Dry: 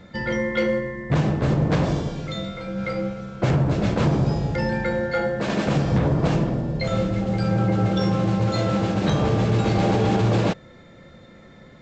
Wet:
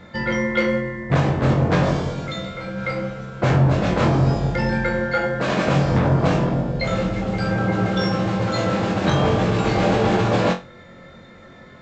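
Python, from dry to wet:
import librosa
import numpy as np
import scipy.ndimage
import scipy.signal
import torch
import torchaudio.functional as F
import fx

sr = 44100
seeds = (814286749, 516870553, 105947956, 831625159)

y = fx.peak_eq(x, sr, hz=1300.0, db=5.0, octaves=2.4)
y = fx.room_flutter(y, sr, wall_m=3.8, rt60_s=0.24)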